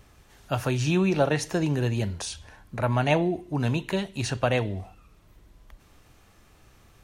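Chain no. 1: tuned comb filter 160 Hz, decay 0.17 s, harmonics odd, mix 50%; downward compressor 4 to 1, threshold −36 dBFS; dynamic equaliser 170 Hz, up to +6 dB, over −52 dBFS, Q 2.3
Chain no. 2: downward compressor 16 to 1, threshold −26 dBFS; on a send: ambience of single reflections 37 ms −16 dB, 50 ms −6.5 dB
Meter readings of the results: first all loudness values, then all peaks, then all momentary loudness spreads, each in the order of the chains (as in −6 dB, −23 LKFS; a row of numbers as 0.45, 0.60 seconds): −37.5, −31.5 LKFS; −21.5, −14.5 dBFS; 8, 6 LU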